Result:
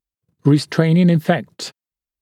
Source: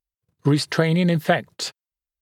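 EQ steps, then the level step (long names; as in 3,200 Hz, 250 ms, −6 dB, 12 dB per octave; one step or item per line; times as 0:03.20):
parametric band 220 Hz +8.5 dB 1.8 octaves
−1.0 dB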